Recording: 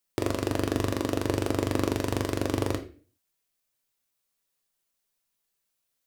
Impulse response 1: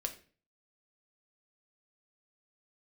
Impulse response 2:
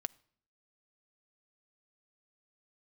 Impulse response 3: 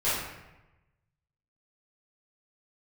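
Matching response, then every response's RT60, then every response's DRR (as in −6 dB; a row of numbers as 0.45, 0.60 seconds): 1; 0.40 s, non-exponential decay, 1.0 s; 4.5, 16.0, −12.5 decibels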